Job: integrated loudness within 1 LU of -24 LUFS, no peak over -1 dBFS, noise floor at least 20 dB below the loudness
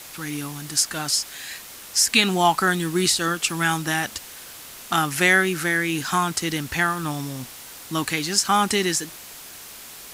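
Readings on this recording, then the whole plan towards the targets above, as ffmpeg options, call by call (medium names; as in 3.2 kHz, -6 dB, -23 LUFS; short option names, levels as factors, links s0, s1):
noise floor -41 dBFS; noise floor target -42 dBFS; loudness -21.5 LUFS; peak level -2.0 dBFS; loudness target -24.0 LUFS
-> -af "afftdn=nr=6:nf=-41"
-af "volume=0.75"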